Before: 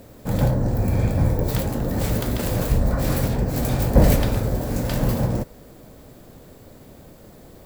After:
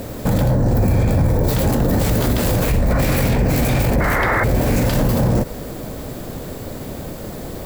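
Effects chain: 2.63–4.86 s: peaking EQ 2.3 kHz +8 dB 0.63 oct; 4.00–4.44 s: painted sound noise 290–2200 Hz -16 dBFS; loudness maximiser +23.5 dB; trim -8 dB

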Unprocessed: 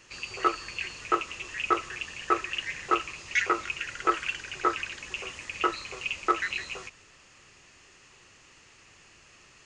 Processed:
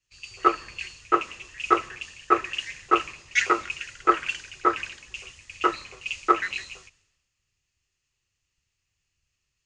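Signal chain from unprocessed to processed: resampled via 22.05 kHz; three bands expanded up and down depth 100%

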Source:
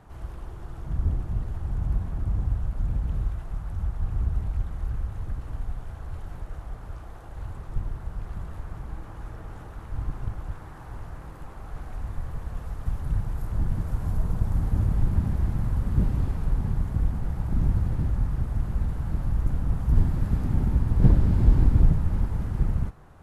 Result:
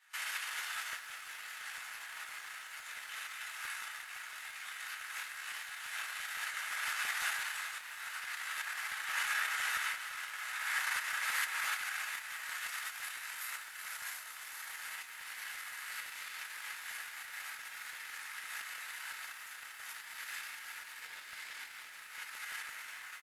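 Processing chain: simulated room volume 87 m³, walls mixed, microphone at 1.9 m; level rider gain up to 9 dB; in parallel at -5.5 dB: saturation -17.5 dBFS, distortion -7 dB; on the sum: gate -20 dBFS, range -22 dB; on a send: feedback delay 233 ms, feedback 41%, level -18.5 dB; on the sum: compression 5:1, threshold -18 dBFS, peak gain reduction 13.5 dB; Chebyshev high-pass 1.9 kHz, order 3; crackling interface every 0.17 s, samples 64, repeat, from 0.59 s; bit-crushed delay 378 ms, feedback 55%, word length 12-bit, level -12 dB; trim +14 dB

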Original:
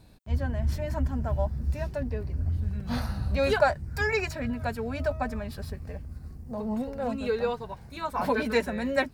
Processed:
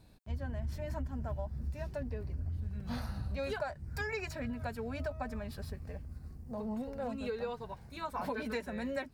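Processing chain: compression 6:1, threshold -28 dBFS, peak gain reduction 11.5 dB; trim -5.5 dB

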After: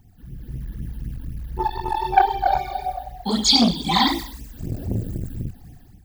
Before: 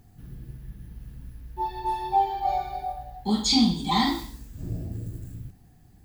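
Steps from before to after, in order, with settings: 2.59–4.87 s: bass shelf 370 Hz -7 dB; level rider gain up to 11.5 dB; phase shifter stages 12, 3.9 Hz, lowest notch 110–1500 Hz; transformer saturation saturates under 710 Hz; trim +1.5 dB

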